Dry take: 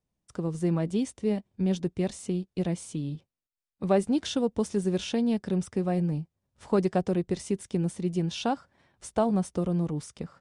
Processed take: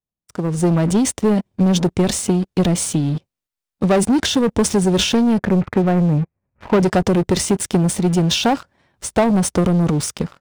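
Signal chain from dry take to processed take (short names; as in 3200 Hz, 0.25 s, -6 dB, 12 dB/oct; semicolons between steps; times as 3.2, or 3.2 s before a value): 5.38–6.82 steep low-pass 2600 Hz 96 dB/oct; sample leveller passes 3; AGC gain up to 9.5 dB; transient shaper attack +3 dB, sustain +8 dB; gain -6.5 dB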